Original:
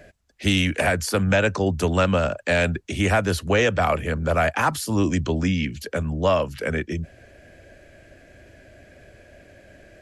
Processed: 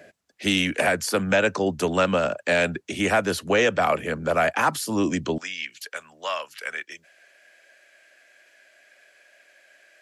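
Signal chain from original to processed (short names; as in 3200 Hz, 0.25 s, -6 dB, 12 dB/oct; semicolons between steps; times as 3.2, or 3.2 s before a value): HPF 200 Hz 12 dB/oct, from 5.38 s 1200 Hz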